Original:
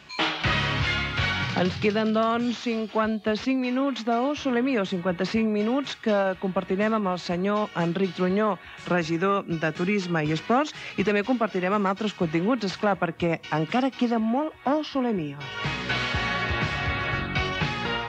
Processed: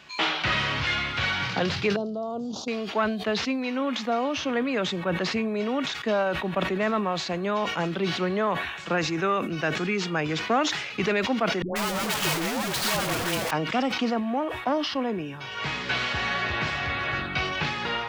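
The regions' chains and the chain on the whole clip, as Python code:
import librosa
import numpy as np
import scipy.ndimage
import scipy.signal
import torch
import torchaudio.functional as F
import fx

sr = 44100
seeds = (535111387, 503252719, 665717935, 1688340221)

y = fx.chain(x, sr, fx.high_shelf(hz=3700.0, db=-10.0),
    fx.level_steps(step_db=9),
    fx.cheby1_bandstop(low_hz=720.0, high_hz=5300.0, order=2), at=(1.96, 2.68))
y = fx.chain(y, sr, fx.clip_1bit(),
    fx.dispersion(late='highs', ms=138.0, hz=600.0), at=(11.62, 13.51))
y = fx.low_shelf(y, sr, hz=290.0, db=-7.0)
y = fx.sustainer(y, sr, db_per_s=50.0)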